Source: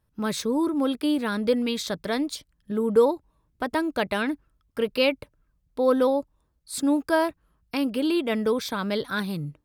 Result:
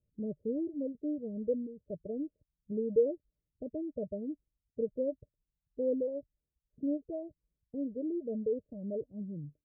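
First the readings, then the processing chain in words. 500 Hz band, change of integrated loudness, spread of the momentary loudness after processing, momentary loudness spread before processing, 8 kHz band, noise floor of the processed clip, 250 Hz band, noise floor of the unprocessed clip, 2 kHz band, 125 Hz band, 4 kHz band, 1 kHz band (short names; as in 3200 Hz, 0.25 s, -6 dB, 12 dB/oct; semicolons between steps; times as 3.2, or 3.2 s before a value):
-9.5 dB, -11.0 dB, 12 LU, 11 LU, under -40 dB, under -85 dBFS, -11.0 dB, -71 dBFS, under -40 dB, n/a, under -40 dB, under -30 dB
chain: reverb removal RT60 1.5 s; rippled Chebyshev low-pass 620 Hz, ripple 3 dB; gain -7 dB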